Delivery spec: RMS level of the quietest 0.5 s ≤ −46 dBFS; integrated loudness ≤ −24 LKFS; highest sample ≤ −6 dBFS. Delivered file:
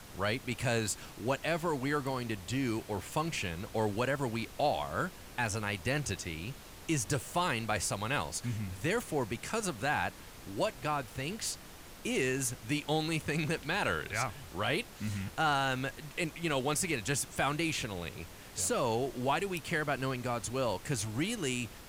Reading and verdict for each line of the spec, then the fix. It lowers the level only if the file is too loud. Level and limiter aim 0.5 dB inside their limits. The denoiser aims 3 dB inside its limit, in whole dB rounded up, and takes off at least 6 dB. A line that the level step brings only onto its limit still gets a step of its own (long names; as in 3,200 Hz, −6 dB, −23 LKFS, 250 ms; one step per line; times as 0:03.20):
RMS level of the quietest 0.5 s −50 dBFS: in spec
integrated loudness −34.0 LKFS: in spec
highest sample −19.0 dBFS: in spec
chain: no processing needed